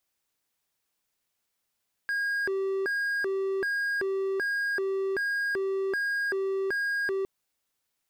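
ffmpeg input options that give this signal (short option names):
-f lavfi -i "aevalsrc='0.0631*(1-4*abs(mod((1008.5*t+621.5/1.3*(0.5-abs(mod(1.3*t,1)-0.5)))+0.25,1)-0.5))':d=5.16:s=44100"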